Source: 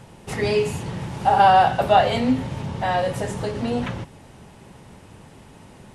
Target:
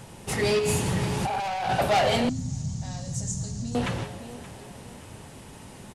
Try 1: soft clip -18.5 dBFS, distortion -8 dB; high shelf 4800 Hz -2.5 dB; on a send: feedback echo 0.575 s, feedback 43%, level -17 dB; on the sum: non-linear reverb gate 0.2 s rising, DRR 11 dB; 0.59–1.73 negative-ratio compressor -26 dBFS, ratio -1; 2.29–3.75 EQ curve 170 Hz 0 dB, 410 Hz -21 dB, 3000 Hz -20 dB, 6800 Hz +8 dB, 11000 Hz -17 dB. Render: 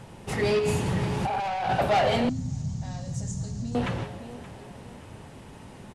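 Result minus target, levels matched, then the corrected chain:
8000 Hz band -7.0 dB
soft clip -18.5 dBFS, distortion -8 dB; high shelf 4800 Hz +8.5 dB; on a send: feedback echo 0.575 s, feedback 43%, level -17 dB; on the sum: non-linear reverb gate 0.2 s rising, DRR 11 dB; 0.59–1.73 negative-ratio compressor -26 dBFS, ratio -1; 2.29–3.75 EQ curve 170 Hz 0 dB, 410 Hz -21 dB, 3000 Hz -20 dB, 6800 Hz +8 dB, 11000 Hz -17 dB

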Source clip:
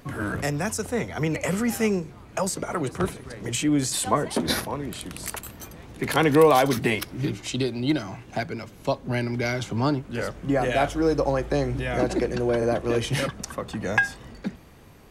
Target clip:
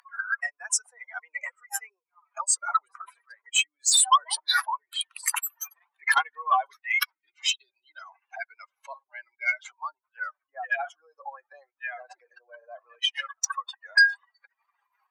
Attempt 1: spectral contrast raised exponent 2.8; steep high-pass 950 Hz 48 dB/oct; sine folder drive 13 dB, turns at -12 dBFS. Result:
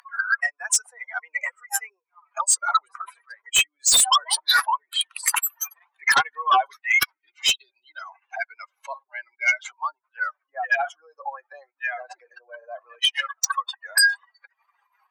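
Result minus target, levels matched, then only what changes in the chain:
sine folder: distortion +10 dB
change: sine folder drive 6 dB, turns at -12 dBFS

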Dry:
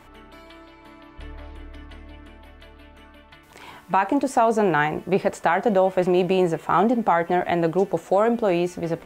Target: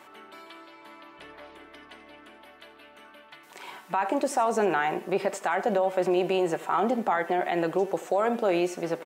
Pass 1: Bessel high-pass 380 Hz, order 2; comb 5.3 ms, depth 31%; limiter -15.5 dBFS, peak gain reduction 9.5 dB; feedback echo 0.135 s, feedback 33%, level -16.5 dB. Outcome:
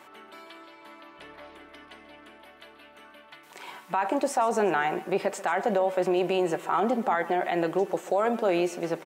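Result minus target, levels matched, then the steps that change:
echo 51 ms late
change: feedback echo 84 ms, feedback 33%, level -16.5 dB

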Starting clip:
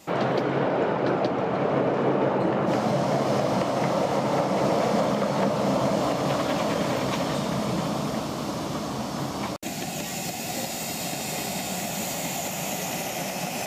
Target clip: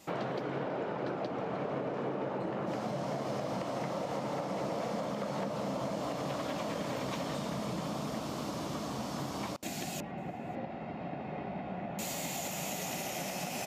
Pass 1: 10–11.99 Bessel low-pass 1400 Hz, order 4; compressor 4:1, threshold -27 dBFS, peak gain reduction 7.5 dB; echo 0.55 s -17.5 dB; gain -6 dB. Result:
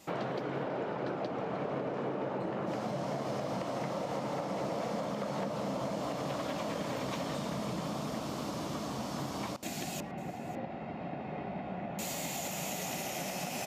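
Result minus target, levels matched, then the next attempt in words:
echo-to-direct +11.5 dB
10–11.99 Bessel low-pass 1400 Hz, order 4; compressor 4:1, threshold -27 dBFS, peak gain reduction 7.5 dB; echo 0.55 s -29 dB; gain -6 dB

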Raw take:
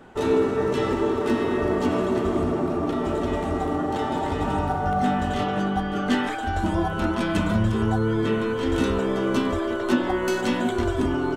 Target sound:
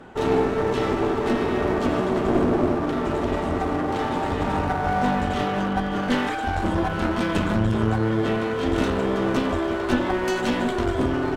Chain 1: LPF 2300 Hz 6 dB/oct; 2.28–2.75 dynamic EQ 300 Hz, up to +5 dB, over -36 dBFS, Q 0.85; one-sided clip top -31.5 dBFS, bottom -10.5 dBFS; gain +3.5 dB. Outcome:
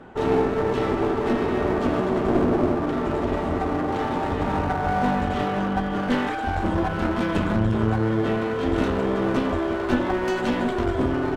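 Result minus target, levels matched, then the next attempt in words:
8000 Hz band -5.0 dB
LPF 6600 Hz 6 dB/oct; 2.28–2.75 dynamic EQ 300 Hz, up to +5 dB, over -36 dBFS, Q 0.85; one-sided clip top -31.5 dBFS, bottom -10.5 dBFS; gain +3.5 dB

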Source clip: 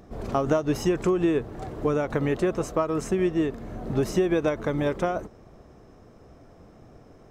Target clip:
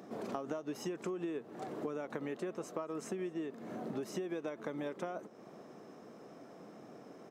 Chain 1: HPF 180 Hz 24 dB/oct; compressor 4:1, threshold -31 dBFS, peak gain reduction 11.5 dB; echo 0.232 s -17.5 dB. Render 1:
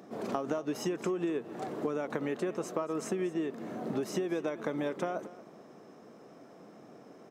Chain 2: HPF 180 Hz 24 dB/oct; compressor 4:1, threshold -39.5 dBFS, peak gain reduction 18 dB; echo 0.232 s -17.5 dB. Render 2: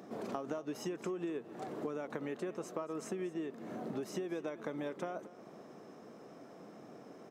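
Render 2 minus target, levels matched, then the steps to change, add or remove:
echo-to-direct +9.5 dB
change: echo 0.232 s -27 dB

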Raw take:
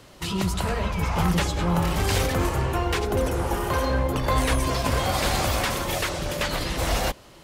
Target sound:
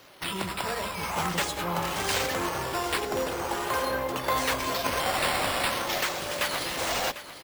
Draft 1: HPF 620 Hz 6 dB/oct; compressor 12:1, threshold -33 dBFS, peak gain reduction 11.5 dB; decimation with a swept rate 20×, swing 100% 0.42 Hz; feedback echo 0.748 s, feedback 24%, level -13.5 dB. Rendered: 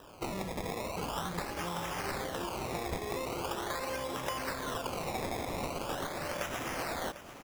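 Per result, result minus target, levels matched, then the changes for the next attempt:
compressor: peak gain reduction +11.5 dB; decimation with a swept rate: distortion +11 dB
remove: compressor 12:1, threshold -33 dBFS, peak gain reduction 11.5 dB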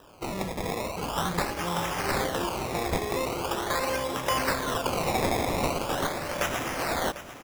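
decimation with a swept rate: distortion +11 dB
change: decimation with a swept rate 5×, swing 100% 0.42 Hz

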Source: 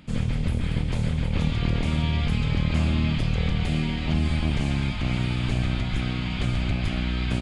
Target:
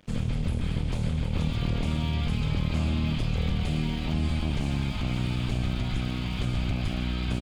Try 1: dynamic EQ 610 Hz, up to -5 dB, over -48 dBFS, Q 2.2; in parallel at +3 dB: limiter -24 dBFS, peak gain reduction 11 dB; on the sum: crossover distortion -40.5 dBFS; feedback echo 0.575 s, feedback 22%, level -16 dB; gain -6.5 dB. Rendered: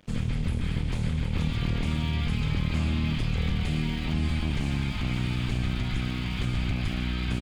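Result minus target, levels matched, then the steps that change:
2000 Hz band +2.5 dB
change: dynamic EQ 1900 Hz, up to -5 dB, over -48 dBFS, Q 2.2

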